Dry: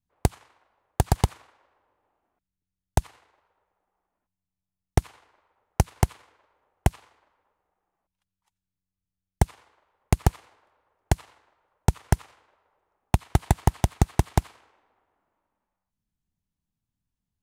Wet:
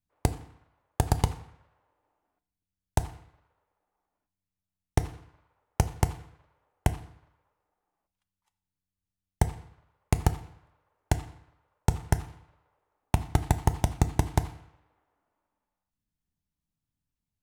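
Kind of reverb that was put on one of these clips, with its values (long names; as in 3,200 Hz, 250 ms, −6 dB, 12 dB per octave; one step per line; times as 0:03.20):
feedback delay network reverb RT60 0.62 s, low-frequency decay 1.1×, high-frequency decay 0.7×, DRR 10.5 dB
level −3.5 dB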